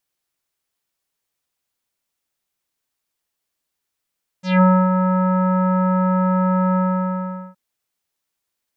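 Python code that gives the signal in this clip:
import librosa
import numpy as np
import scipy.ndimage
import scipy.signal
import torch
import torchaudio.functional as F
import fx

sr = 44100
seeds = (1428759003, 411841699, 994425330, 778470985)

y = fx.sub_voice(sr, note=54, wave='square', cutoff_hz=1300.0, q=2.5, env_oct=2.5, env_s=0.17, attack_ms=177.0, decay_s=0.28, sustain_db=-6.0, release_s=0.79, note_s=2.33, slope=24)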